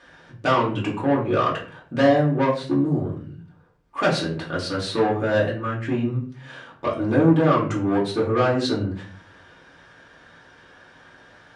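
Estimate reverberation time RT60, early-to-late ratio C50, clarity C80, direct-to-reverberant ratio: 0.45 s, 8.0 dB, 12.5 dB, -6.5 dB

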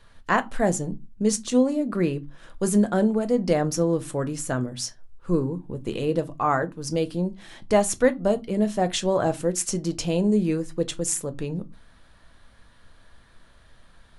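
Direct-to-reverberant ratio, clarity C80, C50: 10.0 dB, 31.0 dB, 23.0 dB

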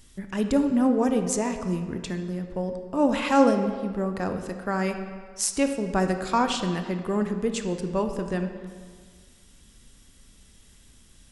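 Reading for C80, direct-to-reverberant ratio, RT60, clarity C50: 9.0 dB, 6.5 dB, 1.8 s, 7.5 dB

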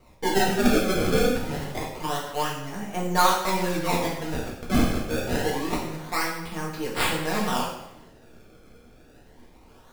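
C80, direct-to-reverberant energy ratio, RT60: 6.0 dB, -4.5 dB, 0.80 s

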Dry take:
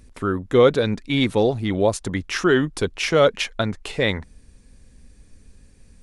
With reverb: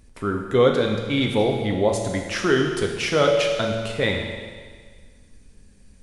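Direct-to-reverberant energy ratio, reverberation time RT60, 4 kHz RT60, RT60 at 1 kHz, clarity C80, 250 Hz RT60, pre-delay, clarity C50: 1.5 dB, 1.7 s, 1.7 s, 1.7 s, 5.5 dB, 1.7 s, 9 ms, 4.0 dB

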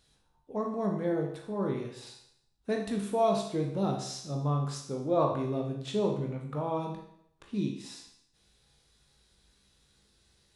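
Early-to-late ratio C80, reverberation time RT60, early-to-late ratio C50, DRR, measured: 8.5 dB, 0.70 s, 5.0 dB, 0.5 dB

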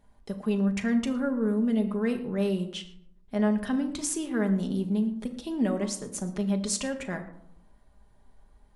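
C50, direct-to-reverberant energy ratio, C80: 11.0 dB, 4.0 dB, 13.5 dB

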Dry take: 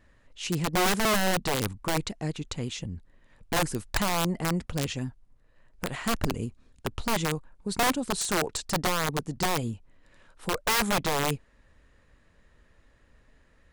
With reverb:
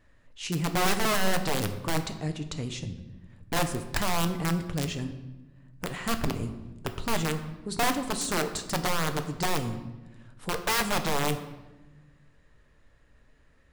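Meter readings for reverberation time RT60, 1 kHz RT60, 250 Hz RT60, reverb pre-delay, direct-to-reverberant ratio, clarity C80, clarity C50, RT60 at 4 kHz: 1.1 s, 0.95 s, 1.8 s, 7 ms, 7.0 dB, 12.5 dB, 10.5 dB, 0.80 s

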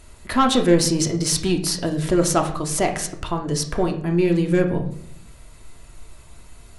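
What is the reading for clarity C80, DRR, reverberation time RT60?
13.5 dB, 3.0 dB, 0.65 s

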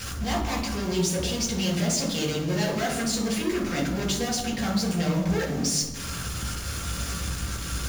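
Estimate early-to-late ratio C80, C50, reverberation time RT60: 8.5 dB, 5.0 dB, 1.2 s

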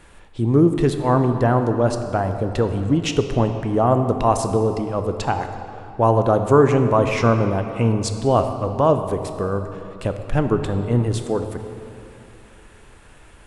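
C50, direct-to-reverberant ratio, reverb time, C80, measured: 7.5 dB, 7.0 dB, 2.7 s, 8.5 dB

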